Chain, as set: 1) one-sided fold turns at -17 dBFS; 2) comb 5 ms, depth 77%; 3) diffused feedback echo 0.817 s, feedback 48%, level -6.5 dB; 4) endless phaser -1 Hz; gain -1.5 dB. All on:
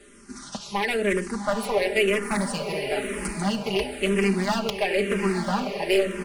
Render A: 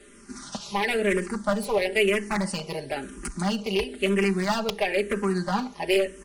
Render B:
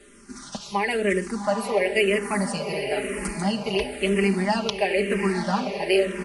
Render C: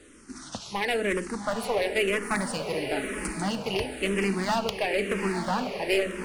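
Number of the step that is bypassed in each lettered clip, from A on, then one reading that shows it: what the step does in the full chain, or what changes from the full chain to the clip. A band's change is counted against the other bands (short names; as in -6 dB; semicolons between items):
3, momentary loudness spread change +4 LU; 1, distortion -10 dB; 2, 125 Hz band -2.0 dB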